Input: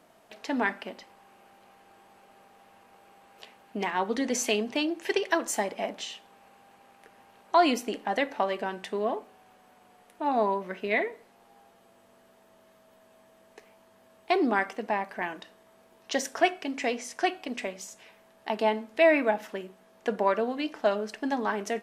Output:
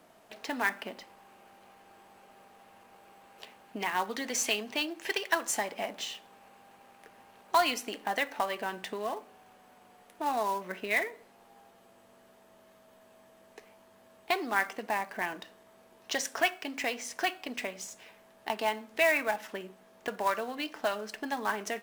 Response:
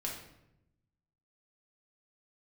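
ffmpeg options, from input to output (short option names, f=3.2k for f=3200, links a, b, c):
-filter_complex "[0:a]acrossover=split=800[a][b];[a]acompressor=threshold=-37dB:ratio=6[c];[b]acrusher=bits=3:mode=log:mix=0:aa=0.000001[d];[c][d]amix=inputs=2:normalize=0"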